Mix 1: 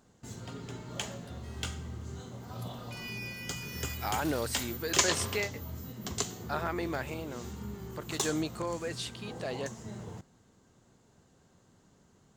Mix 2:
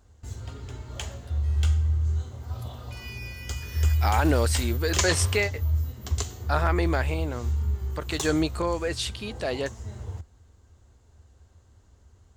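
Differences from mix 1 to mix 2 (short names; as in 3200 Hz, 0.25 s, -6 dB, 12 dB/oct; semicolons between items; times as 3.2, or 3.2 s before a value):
speech +8.0 dB; first sound: add resonant low shelf 110 Hz +13 dB, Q 3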